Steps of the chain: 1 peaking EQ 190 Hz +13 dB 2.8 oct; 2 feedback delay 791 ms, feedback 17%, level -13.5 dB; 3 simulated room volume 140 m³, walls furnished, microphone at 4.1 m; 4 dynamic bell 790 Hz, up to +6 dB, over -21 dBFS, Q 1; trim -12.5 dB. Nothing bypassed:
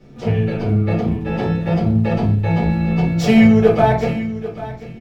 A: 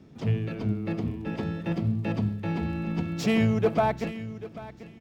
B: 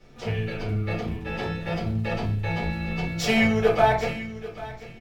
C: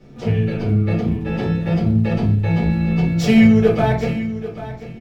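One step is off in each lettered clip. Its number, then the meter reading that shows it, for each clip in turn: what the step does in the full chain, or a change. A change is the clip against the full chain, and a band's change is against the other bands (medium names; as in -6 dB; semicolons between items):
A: 3, momentary loudness spread change +1 LU; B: 1, 250 Hz band -8.5 dB; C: 4, 1 kHz band -5.0 dB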